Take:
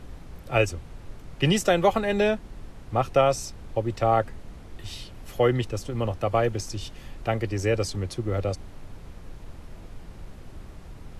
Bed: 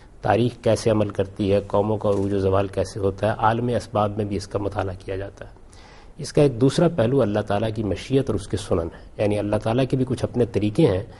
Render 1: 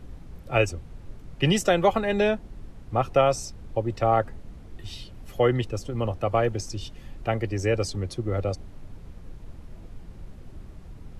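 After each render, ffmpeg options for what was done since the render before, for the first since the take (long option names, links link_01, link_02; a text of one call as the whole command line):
ffmpeg -i in.wav -af "afftdn=noise_reduction=6:noise_floor=-44" out.wav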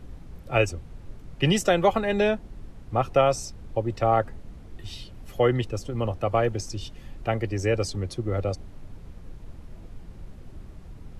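ffmpeg -i in.wav -af anull out.wav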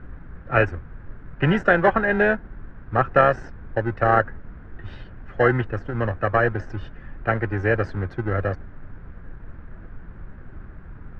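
ffmpeg -i in.wav -filter_complex "[0:a]asplit=2[link_01][link_02];[link_02]acrusher=samples=38:mix=1:aa=0.000001,volume=-8dB[link_03];[link_01][link_03]amix=inputs=2:normalize=0,lowpass=frequency=1600:width_type=q:width=4.5" out.wav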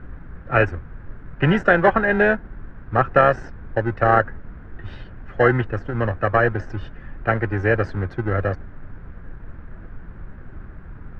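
ffmpeg -i in.wav -af "volume=2dB,alimiter=limit=-2dB:level=0:latency=1" out.wav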